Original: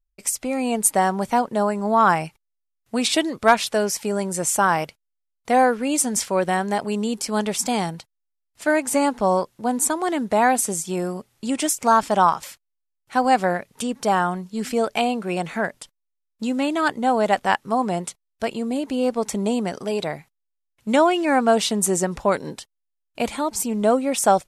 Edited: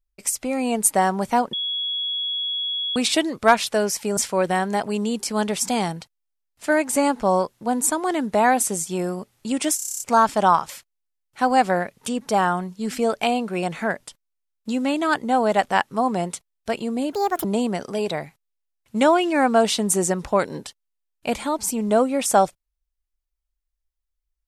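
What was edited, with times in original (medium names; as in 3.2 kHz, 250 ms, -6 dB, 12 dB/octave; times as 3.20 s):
1.53–2.96 s: bleep 3.35 kHz -23 dBFS
4.17–6.15 s: delete
11.74 s: stutter 0.03 s, 9 plays
18.87–19.37 s: speed 159%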